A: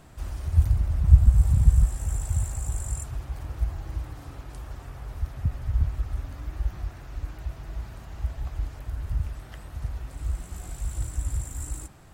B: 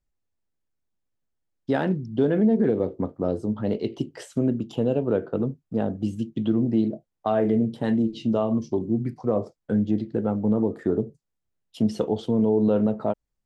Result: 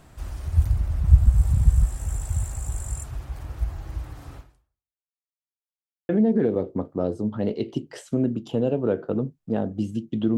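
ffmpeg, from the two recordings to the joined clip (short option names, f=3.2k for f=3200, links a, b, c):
-filter_complex "[0:a]apad=whole_dur=10.37,atrim=end=10.37,asplit=2[a][b];[a]atrim=end=5.15,asetpts=PTS-STARTPTS,afade=t=out:st=4.37:d=0.78:c=exp[c];[b]atrim=start=5.15:end=6.09,asetpts=PTS-STARTPTS,volume=0[d];[1:a]atrim=start=2.33:end=6.61,asetpts=PTS-STARTPTS,afade=t=in:d=0.004:c=hsin[e];[c][d][e]concat=n=3:v=0:a=1"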